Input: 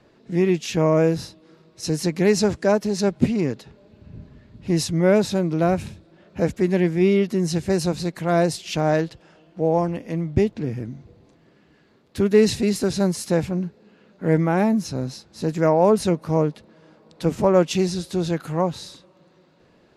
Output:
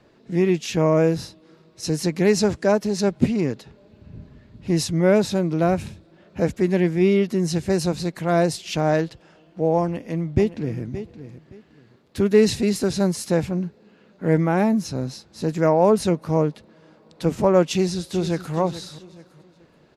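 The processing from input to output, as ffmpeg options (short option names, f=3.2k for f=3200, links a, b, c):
-filter_complex "[0:a]asplit=2[a][b];[b]afade=t=in:st=9.82:d=0.01,afade=t=out:st=10.81:d=0.01,aecho=0:1:570|1140:0.237137|0.0474275[c];[a][c]amix=inputs=2:normalize=0,asplit=2[d][e];[e]afade=t=in:st=17.69:d=0.01,afade=t=out:st=18.55:d=0.01,aecho=0:1:430|860|1290:0.223872|0.0783552|0.0274243[f];[d][f]amix=inputs=2:normalize=0"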